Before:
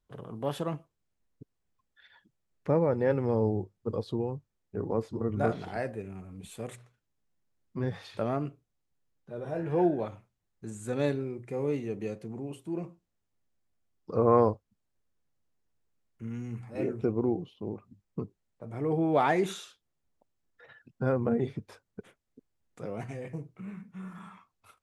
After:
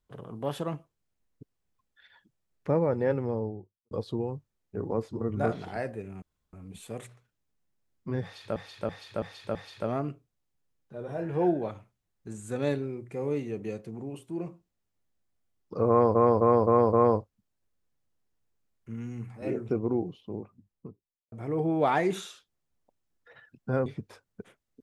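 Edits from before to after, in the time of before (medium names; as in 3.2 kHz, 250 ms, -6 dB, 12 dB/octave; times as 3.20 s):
2.98–3.91 s: studio fade out
6.22 s: insert room tone 0.31 s
7.92–8.25 s: loop, 5 plays
14.26–14.52 s: loop, 5 plays
17.52–18.65 s: studio fade out
21.19–21.45 s: delete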